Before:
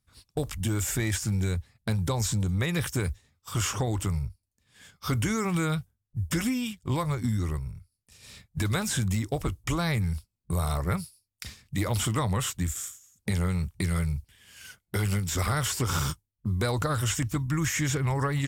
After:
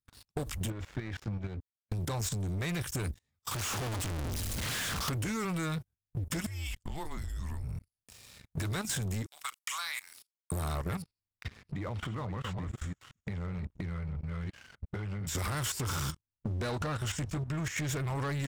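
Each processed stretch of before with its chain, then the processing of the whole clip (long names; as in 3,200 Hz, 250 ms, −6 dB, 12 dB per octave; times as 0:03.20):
0:00.70–0:01.92: volume swells 355 ms + power curve on the samples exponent 2 + high-frequency loss of the air 270 metres
0:03.51–0:05.09: sign of each sample alone + highs frequency-modulated by the lows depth 0.53 ms
0:06.46–0:07.64: downward compressor, threshold −34 dBFS + frequency shifter −160 Hz
0:09.26–0:10.52: Bessel high-pass filter 1,600 Hz, order 6 + double-tracking delay 40 ms −11.5 dB
0:11.02–0:15.27: delay that plays each chunk backwards 349 ms, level −10 dB + low-pass filter 2,200 Hz + downward compressor 5 to 1, threshold −41 dBFS
0:16.12–0:17.89: high-frequency loss of the air 60 metres + double-tracking delay 13 ms −9.5 dB
whole clip: output level in coarse steps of 15 dB; leveller curve on the samples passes 3; downward compressor, threshold −33 dBFS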